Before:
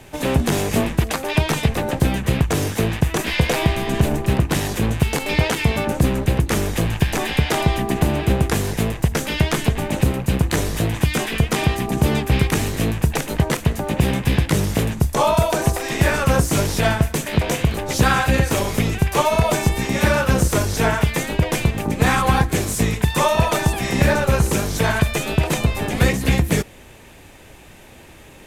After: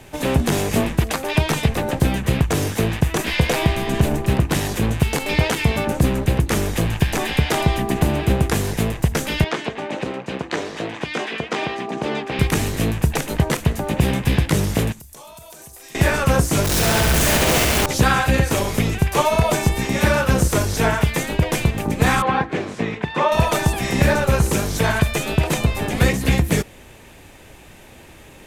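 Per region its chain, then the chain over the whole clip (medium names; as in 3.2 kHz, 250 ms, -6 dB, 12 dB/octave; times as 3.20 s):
9.44–12.39 s: high-pass 310 Hz + distance through air 130 m
14.92–15.95 s: pre-emphasis filter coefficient 0.8 + compression 10:1, threshold -37 dBFS
16.64–17.86 s: one-bit comparator + flutter echo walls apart 11.4 m, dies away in 1.4 s
22.22–23.32 s: band-pass 180–5200 Hz + tone controls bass -2 dB, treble -14 dB
whole clip: none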